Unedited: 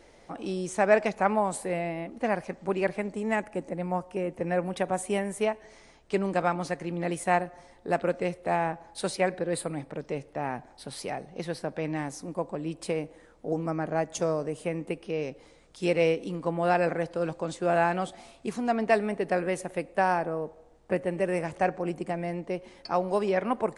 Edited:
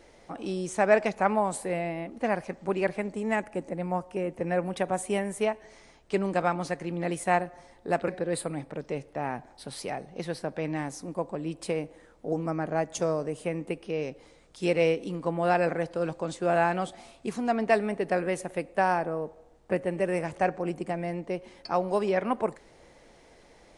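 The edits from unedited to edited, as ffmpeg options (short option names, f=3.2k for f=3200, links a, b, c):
-filter_complex "[0:a]asplit=2[a][b];[a]atrim=end=8.082[c];[b]atrim=start=9.278[d];[c][d]acrossfade=d=0.004:c1=hsin:c2=hsin"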